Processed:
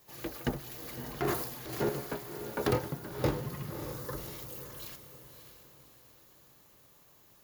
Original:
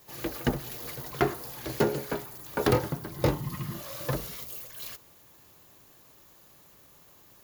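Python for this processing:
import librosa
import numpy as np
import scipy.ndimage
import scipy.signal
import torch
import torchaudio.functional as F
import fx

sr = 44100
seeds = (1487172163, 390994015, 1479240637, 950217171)

y = fx.transient(x, sr, attack_db=-5, sustain_db=11, at=(1.1, 1.89))
y = fx.fixed_phaser(y, sr, hz=700.0, stages=6, at=(3.7, 4.18))
y = fx.echo_diffused(y, sr, ms=599, feedback_pct=41, wet_db=-9.0)
y = F.gain(torch.from_numpy(y), -5.5).numpy()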